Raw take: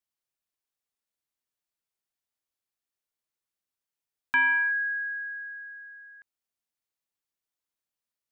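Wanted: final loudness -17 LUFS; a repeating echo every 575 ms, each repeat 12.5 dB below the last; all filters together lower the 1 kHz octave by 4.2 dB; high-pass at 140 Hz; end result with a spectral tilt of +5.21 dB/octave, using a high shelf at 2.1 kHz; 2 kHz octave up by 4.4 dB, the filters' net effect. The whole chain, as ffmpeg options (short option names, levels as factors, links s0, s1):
-af "highpass=140,equalizer=f=1000:t=o:g=-6.5,equalizer=f=2000:t=o:g=4,highshelf=f=2100:g=8.5,aecho=1:1:575|1150|1725:0.237|0.0569|0.0137,volume=1.78"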